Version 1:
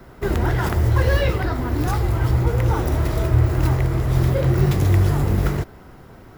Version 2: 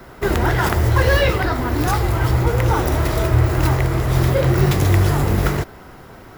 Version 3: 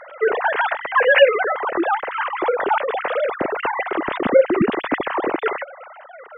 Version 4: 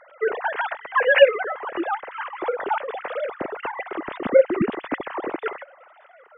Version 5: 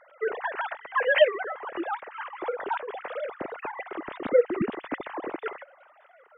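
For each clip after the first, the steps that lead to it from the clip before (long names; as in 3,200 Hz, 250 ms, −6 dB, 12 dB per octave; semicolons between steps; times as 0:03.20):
low-shelf EQ 400 Hz −6.5 dB; level +7 dB
three sine waves on the formant tracks; in parallel at +3 dB: downward compressor, threshold −21 dBFS, peak gain reduction 18 dB; on the sum: level −6.5 dB
delay with a high-pass on its return 584 ms, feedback 35%, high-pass 1,800 Hz, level −18 dB; expander for the loud parts 1.5 to 1, over −28 dBFS
wow of a warped record 78 rpm, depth 160 cents; level −5.5 dB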